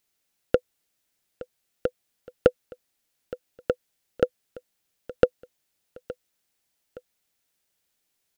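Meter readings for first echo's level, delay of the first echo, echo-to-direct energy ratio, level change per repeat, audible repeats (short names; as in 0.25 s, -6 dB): -18.0 dB, 0.868 s, -17.5 dB, -7.5 dB, 2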